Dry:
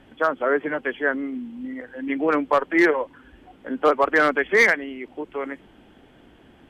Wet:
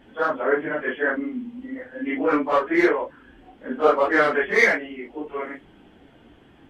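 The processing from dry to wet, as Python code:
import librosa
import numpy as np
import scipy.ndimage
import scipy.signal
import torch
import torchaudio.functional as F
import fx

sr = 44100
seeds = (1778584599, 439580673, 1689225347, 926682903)

y = fx.phase_scramble(x, sr, seeds[0], window_ms=100)
y = fx.high_shelf(y, sr, hz=6900.0, db=-5.5)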